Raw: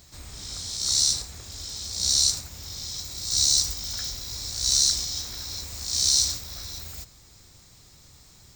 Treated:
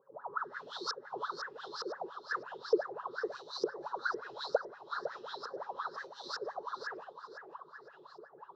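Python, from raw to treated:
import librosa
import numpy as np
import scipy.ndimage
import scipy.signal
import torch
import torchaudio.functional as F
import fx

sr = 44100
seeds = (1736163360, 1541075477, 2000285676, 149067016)

y = fx.highpass(x, sr, hz=170.0, slope=6)
y = fx.high_shelf(y, sr, hz=6900.0, db=-7.5)
y = y + 0.78 * np.pad(y, (int(7.2 * sr / 1000.0), 0))[:len(y)]
y = fx.over_compress(y, sr, threshold_db=-26.0, ratio=-0.5)
y = fx.filter_lfo_lowpass(y, sr, shape='saw_up', hz=1.1, low_hz=460.0, high_hz=5200.0, q=7.6)
y = fx.fixed_phaser(y, sr, hz=450.0, stages=8)
y = fx.wah_lfo(y, sr, hz=5.7, low_hz=340.0, high_hz=1700.0, q=17.0)
y = fx.echo_feedback(y, sr, ms=506, feedback_pct=26, wet_db=-9)
y = y * librosa.db_to_amplitude(16.5)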